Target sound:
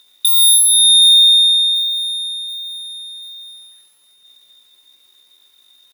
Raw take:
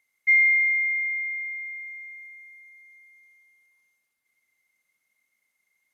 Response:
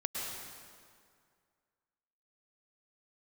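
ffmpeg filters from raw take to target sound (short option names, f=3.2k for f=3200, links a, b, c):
-af "aeval=exprs='0.224*sin(PI/2*4.47*val(0)/0.224)':c=same,aecho=1:1:732|1464|2196|2928:0.126|0.0592|0.0278|0.0131,asetrate=76340,aresample=44100,atempo=0.577676,volume=6dB"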